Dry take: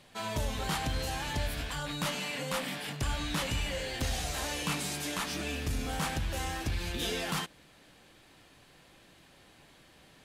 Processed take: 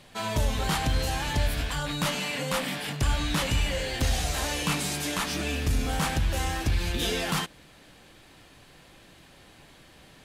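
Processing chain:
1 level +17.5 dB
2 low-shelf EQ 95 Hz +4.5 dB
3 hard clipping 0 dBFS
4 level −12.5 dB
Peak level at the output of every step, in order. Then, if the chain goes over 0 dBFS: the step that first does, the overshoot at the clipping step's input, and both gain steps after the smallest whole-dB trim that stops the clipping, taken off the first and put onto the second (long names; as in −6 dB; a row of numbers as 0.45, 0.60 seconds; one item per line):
−6.0, −3.0, −3.0, −15.5 dBFS
no step passes full scale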